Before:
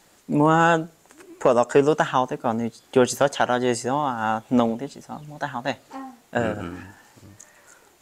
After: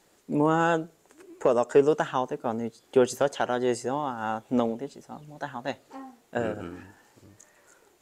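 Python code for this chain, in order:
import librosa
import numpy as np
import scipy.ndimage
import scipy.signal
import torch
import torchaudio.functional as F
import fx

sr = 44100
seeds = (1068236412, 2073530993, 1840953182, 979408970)

y = fx.peak_eq(x, sr, hz=410.0, db=6.0, octaves=0.85)
y = y * 10.0 ** (-7.5 / 20.0)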